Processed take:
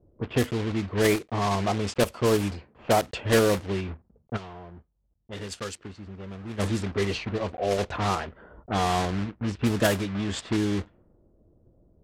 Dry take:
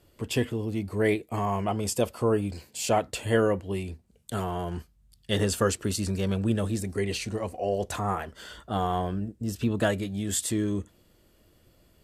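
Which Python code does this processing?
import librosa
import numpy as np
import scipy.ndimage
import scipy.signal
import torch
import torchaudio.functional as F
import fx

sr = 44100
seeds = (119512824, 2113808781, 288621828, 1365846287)

y = fx.block_float(x, sr, bits=3)
y = fx.env_lowpass(y, sr, base_hz=810.0, full_db=-20.5)
y = fx.pre_emphasis(y, sr, coefficient=0.8, at=(4.36, 6.58), fade=0.02)
y = fx.env_lowpass(y, sr, base_hz=640.0, full_db=-24.5)
y = y * 10.0 ** (2.0 / 20.0)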